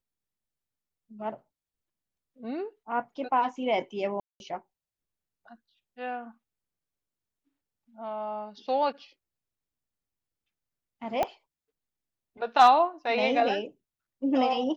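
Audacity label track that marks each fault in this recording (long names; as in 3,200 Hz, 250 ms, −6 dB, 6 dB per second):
4.200000	4.400000	drop-out 201 ms
11.230000	11.230000	click −14 dBFS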